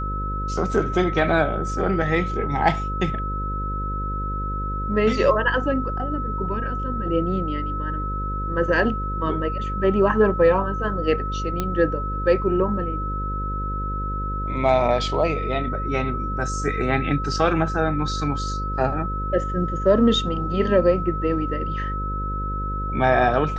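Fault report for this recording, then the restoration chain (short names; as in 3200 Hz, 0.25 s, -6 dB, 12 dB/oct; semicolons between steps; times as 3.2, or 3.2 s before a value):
buzz 50 Hz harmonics 11 -28 dBFS
tone 1300 Hz -28 dBFS
11.6 pop -10 dBFS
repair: de-click; de-hum 50 Hz, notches 11; notch 1300 Hz, Q 30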